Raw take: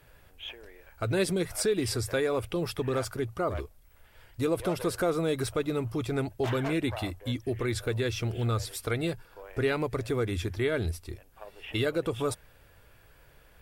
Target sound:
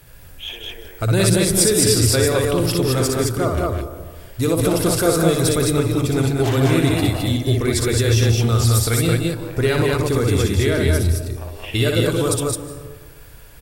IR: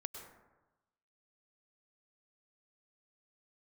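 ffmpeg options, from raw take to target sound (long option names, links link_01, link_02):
-filter_complex "[0:a]bass=frequency=250:gain=6,treble=frequency=4000:gain=10,aecho=1:1:61.22|177.8|212.8:0.631|0.398|0.794,asplit=2[link_01][link_02];[1:a]atrim=start_sample=2205,asetrate=29988,aresample=44100[link_03];[link_02][link_03]afir=irnorm=-1:irlink=0,volume=-3dB[link_04];[link_01][link_04]amix=inputs=2:normalize=0,volume=2dB"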